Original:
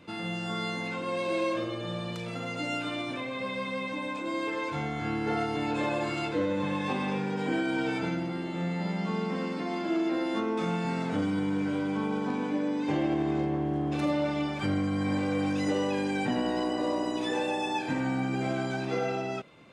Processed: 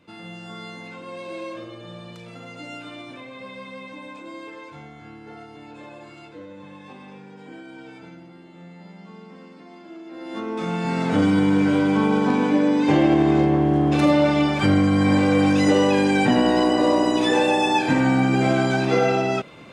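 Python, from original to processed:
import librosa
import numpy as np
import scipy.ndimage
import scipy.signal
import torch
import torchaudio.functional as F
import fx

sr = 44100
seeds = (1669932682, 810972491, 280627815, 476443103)

y = fx.gain(x, sr, db=fx.line((4.19, -4.5), (5.22, -12.0), (10.06, -12.0), (10.38, -0.5), (11.25, 11.0)))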